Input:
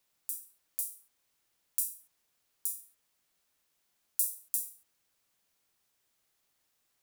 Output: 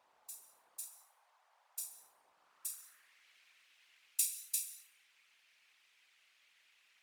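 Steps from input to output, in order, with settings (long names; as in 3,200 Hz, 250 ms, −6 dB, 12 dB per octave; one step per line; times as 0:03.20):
band-pass filter sweep 850 Hz → 2,400 Hz, 0:02.33–0:03.27
dense smooth reverb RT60 0.55 s, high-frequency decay 0.95×, pre-delay 115 ms, DRR 16.5 dB
in parallel at −2.5 dB: speech leveller within 4 dB 2 s
on the sum: random phases in short frames
0:00.86–0:01.79: high-pass filter 610 Hz 24 dB per octave
level +14 dB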